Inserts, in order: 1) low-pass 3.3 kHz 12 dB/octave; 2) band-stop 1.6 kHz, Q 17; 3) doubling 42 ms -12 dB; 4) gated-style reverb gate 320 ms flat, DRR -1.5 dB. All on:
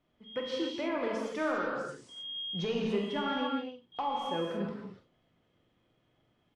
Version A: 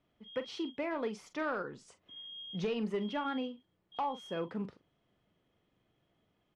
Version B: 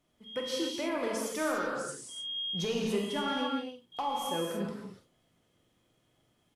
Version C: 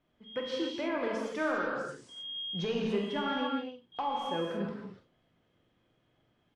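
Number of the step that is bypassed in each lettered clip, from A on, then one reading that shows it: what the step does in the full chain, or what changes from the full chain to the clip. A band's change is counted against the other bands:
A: 4, 4 kHz band -3.0 dB; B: 1, 8 kHz band +14.5 dB; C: 2, 2 kHz band +1.5 dB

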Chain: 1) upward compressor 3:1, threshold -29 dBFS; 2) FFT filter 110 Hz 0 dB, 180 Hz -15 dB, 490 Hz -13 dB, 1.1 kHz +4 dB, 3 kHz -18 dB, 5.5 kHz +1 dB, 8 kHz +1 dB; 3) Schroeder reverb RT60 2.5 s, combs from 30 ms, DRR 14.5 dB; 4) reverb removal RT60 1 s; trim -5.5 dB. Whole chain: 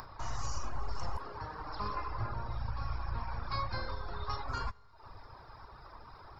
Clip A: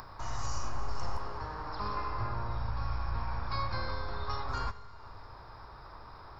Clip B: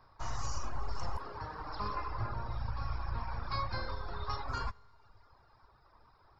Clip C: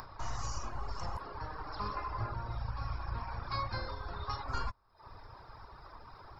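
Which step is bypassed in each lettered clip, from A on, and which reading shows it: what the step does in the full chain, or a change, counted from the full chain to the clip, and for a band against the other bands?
4, loudness change +2.5 LU; 1, momentary loudness spread change -10 LU; 3, crest factor change +3.5 dB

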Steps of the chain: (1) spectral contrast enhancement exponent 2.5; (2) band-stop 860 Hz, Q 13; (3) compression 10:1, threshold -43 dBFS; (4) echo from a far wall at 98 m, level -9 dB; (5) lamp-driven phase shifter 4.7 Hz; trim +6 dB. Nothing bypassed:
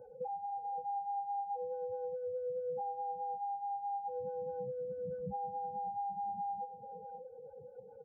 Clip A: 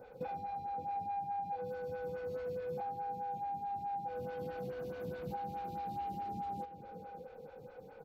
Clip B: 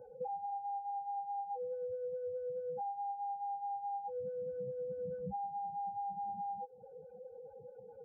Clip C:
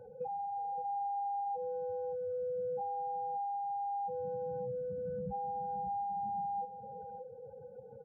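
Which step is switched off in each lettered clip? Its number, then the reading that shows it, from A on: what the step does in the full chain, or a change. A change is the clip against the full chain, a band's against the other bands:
1, 250 Hz band +8.5 dB; 4, momentary loudness spread change +2 LU; 5, 125 Hz band +2.0 dB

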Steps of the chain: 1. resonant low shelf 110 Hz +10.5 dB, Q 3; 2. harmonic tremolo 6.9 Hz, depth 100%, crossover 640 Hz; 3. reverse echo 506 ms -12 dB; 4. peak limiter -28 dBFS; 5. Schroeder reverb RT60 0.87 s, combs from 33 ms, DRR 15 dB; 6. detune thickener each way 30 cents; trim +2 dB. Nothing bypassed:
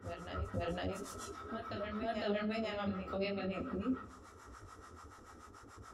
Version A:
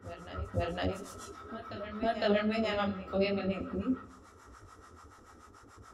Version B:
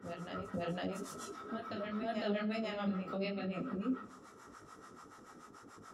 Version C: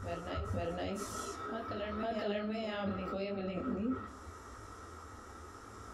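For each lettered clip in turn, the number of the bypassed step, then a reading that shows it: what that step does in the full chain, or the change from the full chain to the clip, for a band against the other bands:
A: 4, mean gain reduction 1.5 dB; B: 1, 250 Hz band +2.0 dB; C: 2, momentary loudness spread change -5 LU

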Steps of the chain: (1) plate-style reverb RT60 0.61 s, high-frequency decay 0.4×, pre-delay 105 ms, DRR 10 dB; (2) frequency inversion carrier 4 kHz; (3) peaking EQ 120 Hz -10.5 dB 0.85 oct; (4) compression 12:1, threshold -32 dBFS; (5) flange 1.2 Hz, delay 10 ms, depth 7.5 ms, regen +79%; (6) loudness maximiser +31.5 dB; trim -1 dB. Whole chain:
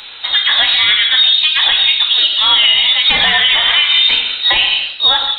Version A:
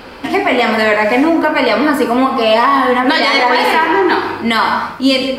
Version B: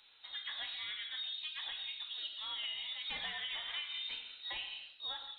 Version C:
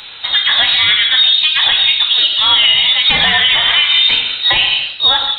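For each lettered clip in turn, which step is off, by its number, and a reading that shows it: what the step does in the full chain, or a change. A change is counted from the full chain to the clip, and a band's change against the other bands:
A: 2, 4 kHz band -29.0 dB; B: 6, crest factor change +4.5 dB; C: 3, 250 Hz band +2.0 dB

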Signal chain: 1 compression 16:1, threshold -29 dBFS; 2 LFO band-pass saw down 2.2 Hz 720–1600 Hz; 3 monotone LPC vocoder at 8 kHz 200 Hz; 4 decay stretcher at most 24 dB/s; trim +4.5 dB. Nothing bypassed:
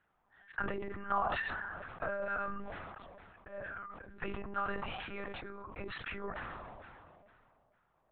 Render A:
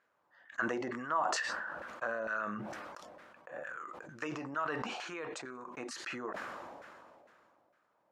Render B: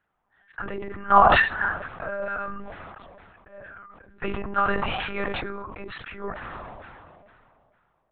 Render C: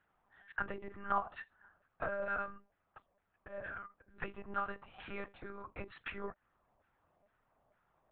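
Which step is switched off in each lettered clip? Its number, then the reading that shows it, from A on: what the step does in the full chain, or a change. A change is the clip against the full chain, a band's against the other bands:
3, 125 Hz band -5.0 dB; 1, mean gain reduction 6.5 dB; 4, crest factor change +3.5 dB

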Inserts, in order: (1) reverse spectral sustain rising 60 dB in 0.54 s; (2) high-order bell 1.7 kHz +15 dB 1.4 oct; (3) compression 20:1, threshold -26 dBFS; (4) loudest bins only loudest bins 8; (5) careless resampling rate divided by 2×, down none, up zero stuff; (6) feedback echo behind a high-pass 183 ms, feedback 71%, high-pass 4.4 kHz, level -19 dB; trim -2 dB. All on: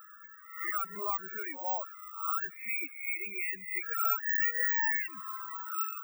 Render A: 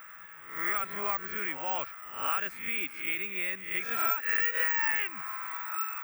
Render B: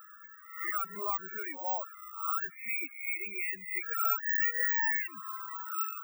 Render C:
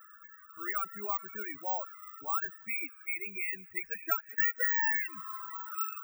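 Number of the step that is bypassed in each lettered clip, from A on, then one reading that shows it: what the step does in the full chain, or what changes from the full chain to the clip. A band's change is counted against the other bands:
4, 250 Hz band +4.0 dB; 6, echo-to-direct -31.0 dB to none; 1, 250 Hz band +3.0 dB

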